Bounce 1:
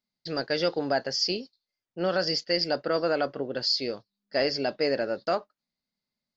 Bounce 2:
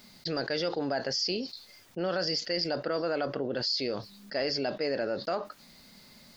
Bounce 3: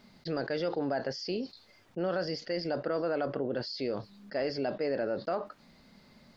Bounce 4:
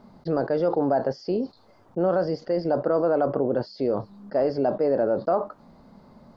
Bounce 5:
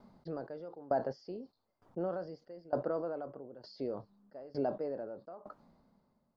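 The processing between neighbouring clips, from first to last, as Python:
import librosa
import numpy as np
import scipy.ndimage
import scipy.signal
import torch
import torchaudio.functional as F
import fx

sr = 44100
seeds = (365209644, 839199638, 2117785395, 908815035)

y1 = fx.env_flatten(x, sr, amount_pct=70)
y1 = y1 * librosa.db_to_amplitude(-6.5)
y2 = fx.lowpass(y1, sr, hz=1500.0, slope=6)
y3 = fx.high_shelf_res(y2, sr, hz=1500.0, db=-13.0, q=1.5)
y3 = y3 * librosa.db_to_amplitude(8.0)
y4 = fx.tremolo_decay(y3, sr, direction='decaying', hz=1.1, depth_db=22)
y4 = y4 * librosa.db_to_amplitude(-7.5)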